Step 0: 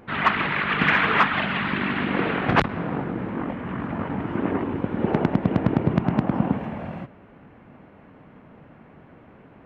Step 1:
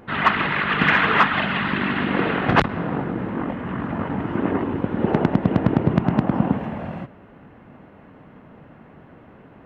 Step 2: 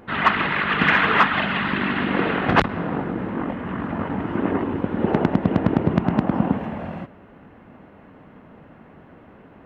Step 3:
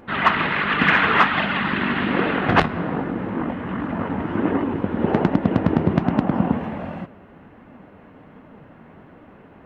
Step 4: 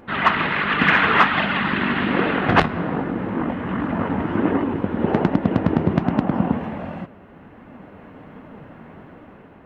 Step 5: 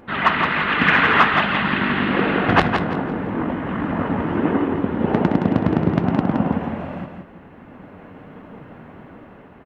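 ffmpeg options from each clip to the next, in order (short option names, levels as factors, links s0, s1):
-af "bandreject=f=2300:w=17,volume=1.33"
-af "equalizer=f=130:t=o:w=0.34:g=-5"
-af "flanger=delay=3.3:depth=9.6:regen=68:speed=1.3:shape=sinusoidal,volume=1.78"
-af "dynaudnorm=f=380:g=5:m=1.68"
-af "aecho=1:1:168|336|504|672:0.501|0.14|0.0393|0.011"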